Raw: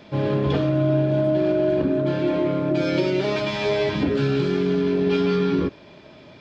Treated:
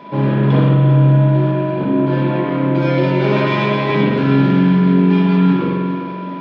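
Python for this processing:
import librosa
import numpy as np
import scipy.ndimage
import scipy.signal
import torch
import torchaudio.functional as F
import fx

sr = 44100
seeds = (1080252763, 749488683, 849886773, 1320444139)

p1 = scipy.signal.sosfilt(scipy.signal.butter(4, 150.0, 'highpass', fs=sr, output='sos'), x)
p2 = fx.bass_treble(p1, sr, bass_db=3, treble_db=-13)
p3 = fx.over_compress(p2, sr, threshold_db=-23.0, ratio=-1.0)
p4 = p2 + F.gain(torch.from_numpy(p3), 1.0).numpy()
p5 = p4 + 10.0 ** (-36.0 / 20.0) * np.sin(2.0 * np.pi * 990.0 * np.arange(len(p4)) / sr)
p6 = fx.echo_feedback(p5, sr, ms=393, feedback_pct=55, wet_db=-12.0)
p7 = fx.rev_spring(p6, sr, rt60_s=1.6, pass_ms=(44,), chirp_ms=20, drr_db=-3.0)
y = F.gain(torch.from_numpy(p7), -3.0).numpy()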